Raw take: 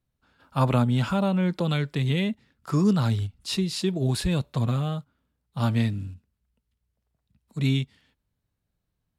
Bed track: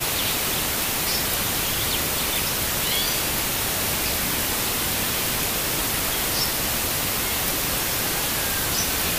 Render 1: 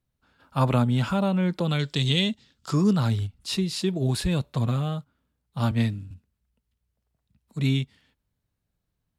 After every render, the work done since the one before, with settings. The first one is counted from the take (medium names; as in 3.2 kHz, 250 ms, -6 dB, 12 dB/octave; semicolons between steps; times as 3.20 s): 1.79–2.73 s: high-order bell 4.9 kHz +11.5 dB; 5.71–6.11 s: three bands expanded up and down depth 100%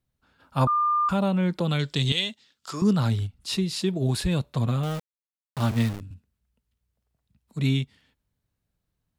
0.67–1.09 s: bleep 1.2 kHz -19.5 dBFS; 2.12–2.82 s: high-pass 850 Hz 6 dB/octave; 4.83–6.01 s: small samples zeroed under -31.5 dBFS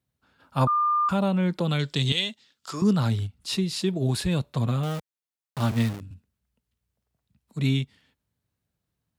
high-pass 70 Hz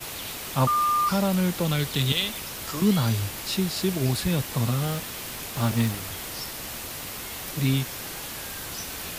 add bed track -11.5 dB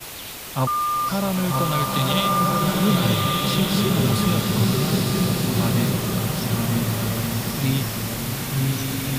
on a send: filtered feedback delay 940 ms, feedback 60%, low-pass 2 kHz, level -5 dB; on the sum: swelling reverb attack 1450 ms, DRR -2 dB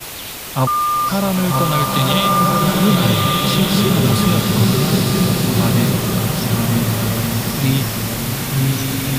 trim +5.5 dB; peak limiter -3 dBFS, peak gain reduction 2 dB